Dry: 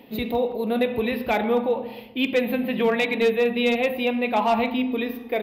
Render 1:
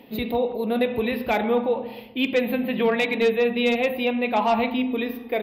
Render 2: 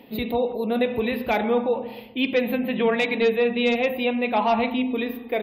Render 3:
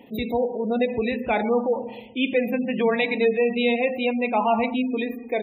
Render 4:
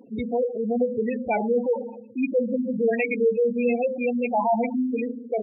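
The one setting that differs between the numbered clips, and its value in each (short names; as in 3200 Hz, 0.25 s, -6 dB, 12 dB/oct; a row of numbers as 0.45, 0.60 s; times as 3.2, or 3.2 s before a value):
spectral gate, under each frame's peak: -55, -45, -25, -10 dB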